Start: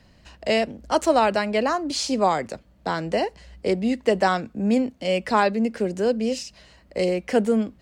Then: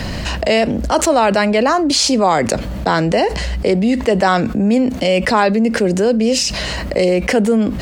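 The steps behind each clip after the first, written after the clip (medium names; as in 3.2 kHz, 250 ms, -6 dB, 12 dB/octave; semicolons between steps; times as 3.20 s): level flattener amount 70%; trim +3.5 dB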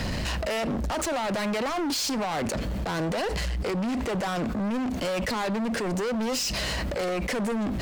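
peak limiter -8.5 dBFS, peak gain reduction 7 dB; hard clipper -21.5 dBFS, distortion -6 dB; trim -4.5 dB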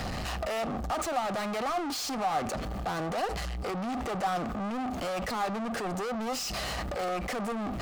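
waveshaping leveller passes 2; small resonant body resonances 760/1200 Hz, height 11 dB, ringing for 25 ms; trim -7 dB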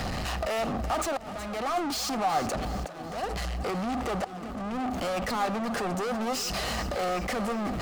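slow attack 600 ms; on a send: two-band feedback delay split 390 Hz, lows 583 ms, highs 371 ms, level -13 dB; on the sum: trim +2.5 dB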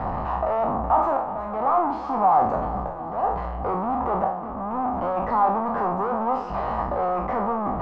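spectral sustain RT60 0.60 s; resonant low-pass 980 Hz, resonance Q 4.2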